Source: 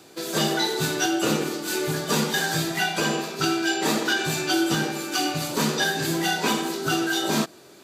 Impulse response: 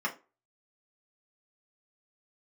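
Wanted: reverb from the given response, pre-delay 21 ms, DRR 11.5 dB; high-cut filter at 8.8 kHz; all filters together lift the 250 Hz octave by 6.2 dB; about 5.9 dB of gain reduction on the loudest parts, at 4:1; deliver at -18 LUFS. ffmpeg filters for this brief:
-filter_complex "[0:a]lowpass=8800,equalizer=f=250:t=o:g=9,acompressor=threshold=0.0891:ratio=4,asplit=2[s0][s1];[1:a]atrim=start_sample=2205,adelay=21[s2];[s1][s2]afir=irnorm=-1:irlink=0,volume=0.112[s3];[s0][s3]amix=inputs=2:normalize=0,volume=2.24"

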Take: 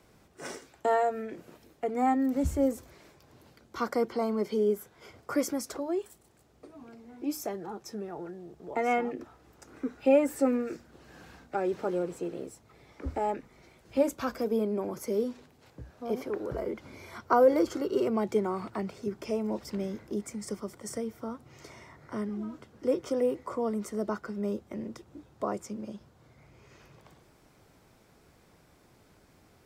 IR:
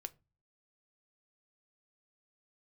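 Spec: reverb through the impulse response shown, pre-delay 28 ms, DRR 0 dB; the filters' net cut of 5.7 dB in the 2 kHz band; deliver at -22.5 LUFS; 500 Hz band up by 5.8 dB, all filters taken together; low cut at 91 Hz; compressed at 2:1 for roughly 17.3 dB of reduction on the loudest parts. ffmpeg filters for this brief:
-filter_complex "[0:a]highpass=91,equalizer=f=500:t=o:g=7,equalizer=f=2000:t=o:g=-8,acompressor=threshold=0.00631:ratio=2,asplit=2[s0][s1];[1:a]atrim=start_sample=2205,adelay=28[s2];[s1][s2]afir=irnorm=-1:irlink=0,volume=1.58[s3];[s0][s3]amix=inputs=2:normalize=0,volume=5.31"

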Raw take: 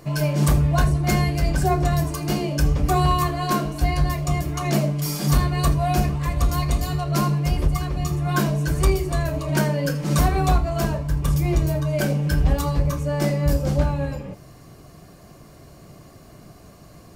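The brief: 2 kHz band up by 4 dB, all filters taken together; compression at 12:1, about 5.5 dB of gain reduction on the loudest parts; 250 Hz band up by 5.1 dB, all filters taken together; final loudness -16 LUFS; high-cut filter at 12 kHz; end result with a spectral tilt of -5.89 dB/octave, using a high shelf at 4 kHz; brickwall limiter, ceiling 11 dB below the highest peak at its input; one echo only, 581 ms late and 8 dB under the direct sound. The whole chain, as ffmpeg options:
-af "lowpass=12000,equalizer=f=250:t=o:g=8.5,equalizer=f=2000:t=o:g=3.5,highshelf=f=4000:g=7,acompressor=threshold=0.141:ratio=12,alimiter=limit=0.1:level=0:latency=1,aecho=1:1:581:0.398,volume=3.98"

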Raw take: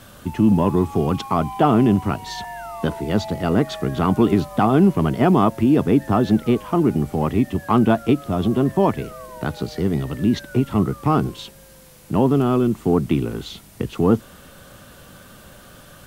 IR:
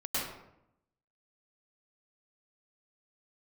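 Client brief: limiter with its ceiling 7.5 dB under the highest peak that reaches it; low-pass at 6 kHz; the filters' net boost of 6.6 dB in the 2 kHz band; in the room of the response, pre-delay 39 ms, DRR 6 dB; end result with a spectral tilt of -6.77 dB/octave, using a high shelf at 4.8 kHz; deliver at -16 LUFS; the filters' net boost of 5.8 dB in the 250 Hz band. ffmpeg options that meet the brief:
-filter_complex "[0:a]lowpass=6000,equalizer=f=250:t=o:g=7,equalizer=f=2000:t=o:g=8,highshelf=f=4800:g=6.5,alimiter=limit=0.422:level=0:latency=1,asplit=2[s0][s1];[1:a]atrim=start_sample=2205,adelay=39[s2];[s1][s2]afir=irnorm=-1:irlink=0,volume=0.237[s3];[s0][s3]amix=inputs=2:normalize=0,volume=1.19"

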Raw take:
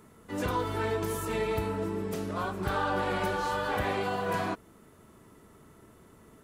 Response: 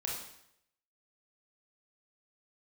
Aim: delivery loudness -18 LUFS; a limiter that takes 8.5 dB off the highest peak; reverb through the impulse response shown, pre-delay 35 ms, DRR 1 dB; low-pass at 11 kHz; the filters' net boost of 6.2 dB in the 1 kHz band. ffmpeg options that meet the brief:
-filter_complex "[0:a]lowpass=11000,equalizer=f=1000:t=o:g=7.5,alimiter=limit=0.0841:level=0:latency=1,asplit=2[s0][s1];[1:a]atrim=start_sample=2205,adelay=35[s2];[s1][s2]afir=irnorm=-1:irlink=0,volume=0.668[s3];[s0][s3]amix=inputs=2:normalize=0,volume=3.16"

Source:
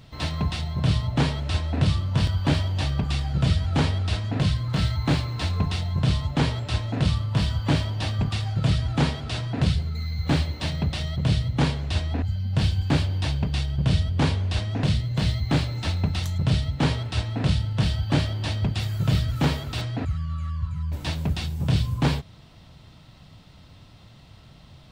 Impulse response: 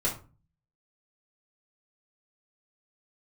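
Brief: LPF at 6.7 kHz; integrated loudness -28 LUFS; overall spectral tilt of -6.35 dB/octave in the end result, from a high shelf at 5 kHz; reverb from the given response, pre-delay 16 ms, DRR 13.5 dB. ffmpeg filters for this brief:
-filter_complex "[0:a]lowpass=6700,highshelf=f=5000:g=-7.5,asplit=2[s0][s1];[1:a]atrim=start_sample=2205,adelay=16[s2];[s1][s2]afir=irnorm=-1:irlink=0,volume=0.0891[s3];[s0][s3]amix=inputs=2:normalize=0,volume=0.708"

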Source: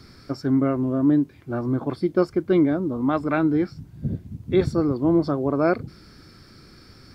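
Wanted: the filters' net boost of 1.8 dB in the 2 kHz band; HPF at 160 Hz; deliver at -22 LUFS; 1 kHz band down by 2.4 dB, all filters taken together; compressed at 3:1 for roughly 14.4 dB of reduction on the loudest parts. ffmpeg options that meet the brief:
-af "highpass=160,equalizer=f=1000:t=o:g=-5.5,equalizer=f=2000:t=o:g=5.5,acompressor=threshold=0.0158:ratio=3,volume=5.31"

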